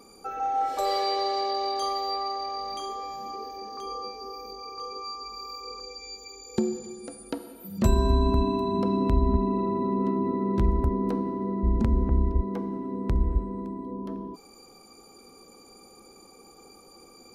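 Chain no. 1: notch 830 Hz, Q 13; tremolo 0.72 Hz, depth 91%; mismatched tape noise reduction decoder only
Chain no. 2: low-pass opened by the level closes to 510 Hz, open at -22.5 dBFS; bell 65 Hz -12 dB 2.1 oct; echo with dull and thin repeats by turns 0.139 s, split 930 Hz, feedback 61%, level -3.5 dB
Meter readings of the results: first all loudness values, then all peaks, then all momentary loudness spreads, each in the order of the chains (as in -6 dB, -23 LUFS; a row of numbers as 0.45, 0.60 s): -32.5, -29.0 LUFS; -12.5, -13.0 dBFS; 17, 15 LU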